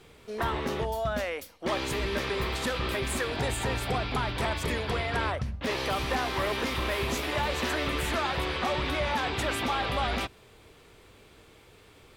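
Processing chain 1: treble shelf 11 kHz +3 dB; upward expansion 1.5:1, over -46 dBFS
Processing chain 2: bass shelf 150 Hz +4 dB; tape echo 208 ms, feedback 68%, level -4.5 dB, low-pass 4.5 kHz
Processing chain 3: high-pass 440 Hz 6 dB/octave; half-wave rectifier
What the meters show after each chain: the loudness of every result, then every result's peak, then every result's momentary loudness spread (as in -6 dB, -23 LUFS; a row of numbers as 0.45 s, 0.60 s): -31.0 LUFS, -28.0 LUFS, -36.0 LUFS; -19.5 dBFS, -15.5 dBFS, -18.5 dBFS; 4 LU, 5 LU, 4 LU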